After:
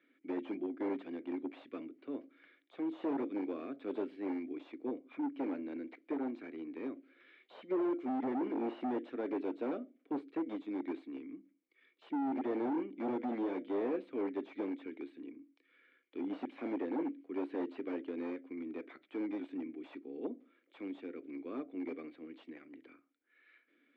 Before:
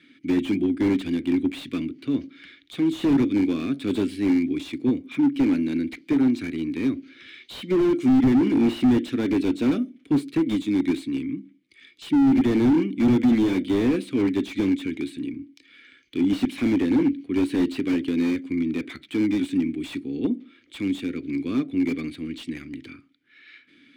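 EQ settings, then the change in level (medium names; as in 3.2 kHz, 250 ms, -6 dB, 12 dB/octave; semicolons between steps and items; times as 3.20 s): ladder band-pass 700 Hz, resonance 35%; +4.0 dB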